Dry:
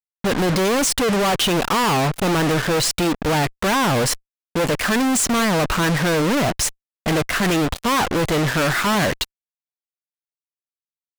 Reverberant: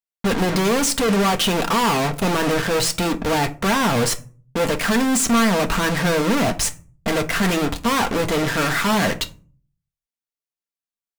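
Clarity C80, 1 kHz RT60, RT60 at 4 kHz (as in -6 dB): 23.5 dB, 0.35 s, 0.20 s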